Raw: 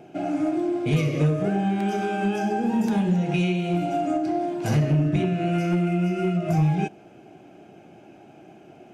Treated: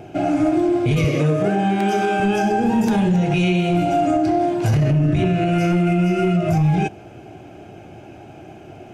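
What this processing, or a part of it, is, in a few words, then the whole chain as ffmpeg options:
car stereo with a boomy subwoofer: -filter_complex "[0:a]asettb=1/sr,asplit=3[a][b][c];[a]atrim=end=1.044[d];[b]atrim=start=1.04:end=2.2,asetpts=PTS-STARTPTS,afade=t=in:d=0.004:c=qsin,afade=t=out:st=1.156:d=0.004:c=qsin,highpass=180[e];[c]atrim=start=2.196[f];[d][e]acrossfade=d=0.004:c1=hsin:c2=qsin[g];[g][f]acrossfade=d=0.004:c1=qsin:c2=hsin,lowshelf=f=130:t=q:w=1.5:g=9.5,alimiter=limit=-19dB:level=0:latency=1:release=25,volume=8.5dB"

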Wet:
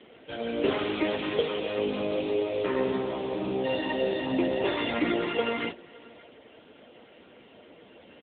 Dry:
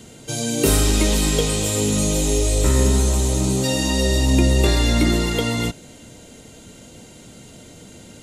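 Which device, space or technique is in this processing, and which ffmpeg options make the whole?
satellite phone: -af "highpass=390,lowpass=3.2k,aecho=1:1:569:0.0708" -ar 8000 -c:a libopencore_amrnb -b:a 6700

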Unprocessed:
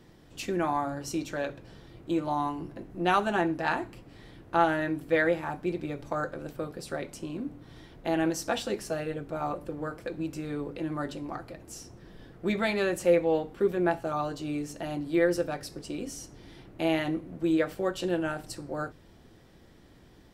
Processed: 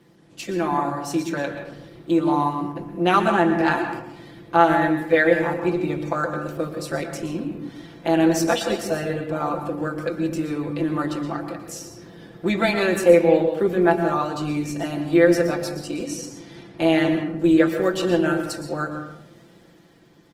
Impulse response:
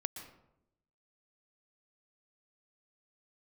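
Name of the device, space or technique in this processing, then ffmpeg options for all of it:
far-field microphone of a smart speaker: -filter_complex "[0:a]aecho=1:1:5.9:0.45,asettb=1/sr,asplit=3[a][b][c];[a]atrim=end=16.044[d];[b]atrim=start=16.04:end=17.37,asetpts=PTS-STARTPTS,afade=t=in:d=0.004:c=qsin,afade=t=out:st=1.326:d=0.004:c=qsin,lowpass=f=11k:w=0.5412,lowpass=f=11k:w=1.3066[e];[c]atrim=start=17.366[f];[d][e]acrossfade=d=0.004:c1=hsin:c2=qsin[g];[g][f]acrossfade=d=0.004:c1=qsin:c2=hsin[h];[1:a]atrim=start_sample=2205[i];[h][i]afir=irnorm=-1:irlink=0,highpass=130,dynaudnorm=f=130:g=13:m=5dB,volume=2.5dB" -ar 48000 -c:a libopus -b:a 20k

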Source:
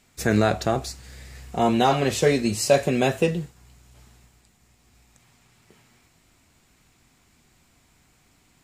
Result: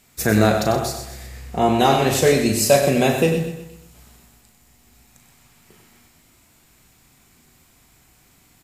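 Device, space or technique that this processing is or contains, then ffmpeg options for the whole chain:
slapback doubling: -filter_complex "[0:a]asettb=1/sr,asplit=3[a][b][c];[a]atrim=end=1.264[d];[b]atrim=start=1.26:end=1.79,asetpts=PTS-STARTPTS,afade=t=in:d=0.004:c=qsin,afade=t=out:st=0.526:d=0.004:c=qsin,highshelf=f=5.3k:g=-8[e];[c]atrim=start=1.786[f];[d][e]acrossfade=d=0.004:c1=hsin:c2=qsin[g];[g][f]acrossfade=d=0.004:c1=qsin:c2=hsin,equalizer=f=13k:w=1:g=10.5,aecho=1:1:125|250|375|500:0.316|0.13|0.0532|0.0218,asplit=3[h][i][j];[i]adelay=37,volume=-8dB[k];[j]adelay=96,volume=-9dB[l];[h][k][l]amix=inputs=3:normalize=0,volume=2.5dB"

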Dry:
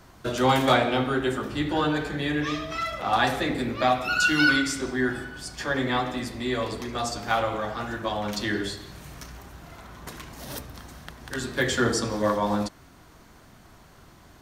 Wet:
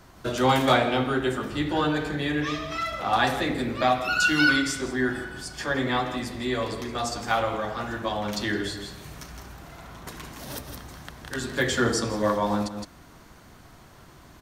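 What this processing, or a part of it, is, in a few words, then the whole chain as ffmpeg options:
ducked delay: -filter_complex "[0:a]asplit=3[a][b][c];[b]adelay=164,volume=-3dB[d];[c]apad=whole_len=643074[e];[d][e]sidechaincompress=threshold=-41dB:ratio=5:attack=7.9:release=157[f];[a][f]amix=inputs=2:normalize=0"

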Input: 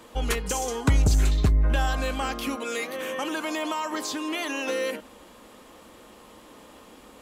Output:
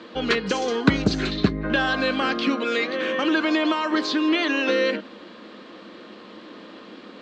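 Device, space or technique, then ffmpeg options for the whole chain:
kitchen radio: -af "highpass=190,equalizer=f=200:t=q:w=4:g=7,equalizer=f=330:t=q:w=4:g=6,equalizer=f=850:t=q:w=4:g=-7,equalizer=f=1.6k:t=q:w=4:g=4,equalizer=f=4.2k:t=q:w=4:g=6,lowpass=f=4.5k:w=0.5412,lowpass=f=4.5k:w=1.3066,volume=6dB"

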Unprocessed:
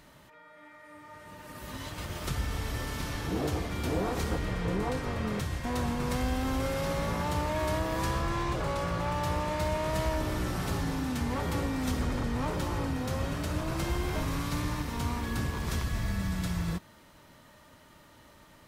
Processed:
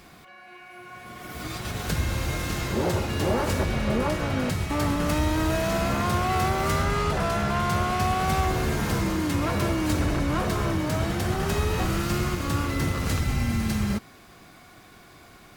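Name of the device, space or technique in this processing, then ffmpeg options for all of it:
nightcore: -af "asetrate=52920,aresample=44100,volume=6dB"

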